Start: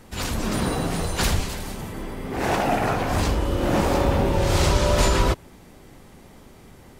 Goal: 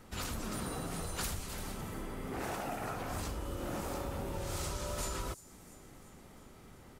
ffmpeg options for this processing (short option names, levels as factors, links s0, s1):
-filter_complex "[0:a]equalizer=f=1300:w=7.1:g=6.5,acrossover=split=7000[s0][s1];[s0]acompressor=threshold=0.0398:ratio=6[s2];[s1]aecho=1:1:345|690|1035|1380|1725|2070:0.224|0.13|0.0753|0.0437|0.0253|0.0147[s3];[s2][s3]amix=inputs=2:normalize=0,volume=0.398"